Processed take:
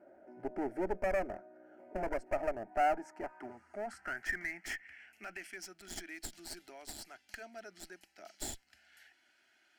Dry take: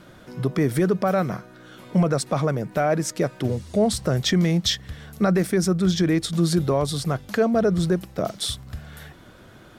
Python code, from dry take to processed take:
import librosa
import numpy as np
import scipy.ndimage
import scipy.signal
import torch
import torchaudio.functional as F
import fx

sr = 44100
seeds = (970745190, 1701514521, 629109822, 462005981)

y = fx.filter_sweep_bandpass(x, sr, from_hz=550.0, to_hz=3700.0, start_s=2.22, end_s=5.8, q=4.3)
y = fx.clip_asym(y, sr, top_db=-40.0, bottom_db=-22.0)
y = fx.fixed_phaser(y, sr, hz=740.0, stages=8)
y = y * librosa.db_to_amplitude(3.0)